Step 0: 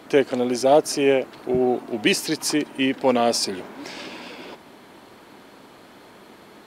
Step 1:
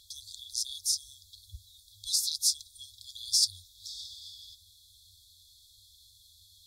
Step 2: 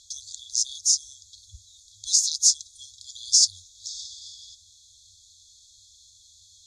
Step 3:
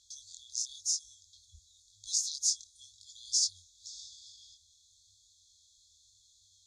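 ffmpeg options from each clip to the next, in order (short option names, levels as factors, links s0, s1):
-af "afftfilt=real='re*(1-between(b*sr/4096,100,3300))':imag='im*(1-between(b*sr/4096,100,3300))':win_size=4096:overlap=0.75"
-af "lowpass=f=6700:t=q:w=6.5,volume=0.891"
-af "flanger=delay=18.5:depth=6.3:speed=0.95,volume=0.422"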